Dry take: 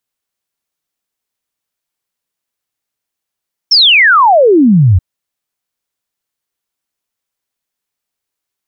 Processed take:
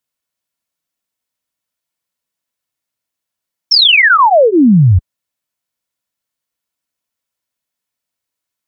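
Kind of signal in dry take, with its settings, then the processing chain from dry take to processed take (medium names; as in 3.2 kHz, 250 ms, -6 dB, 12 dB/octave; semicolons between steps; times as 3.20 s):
log sweep 5.6 kHz -> 83 Hz 1.28 s -3.5 dBFS
comb of notches 400 Hz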